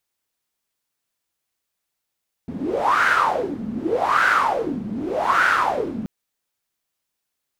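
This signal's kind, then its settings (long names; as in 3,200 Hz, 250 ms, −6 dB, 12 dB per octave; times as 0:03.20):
wind from filtered noise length 3.58 s, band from 210 Hz, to 1,500 Hz, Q 8.3, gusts 3, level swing 11.5 dB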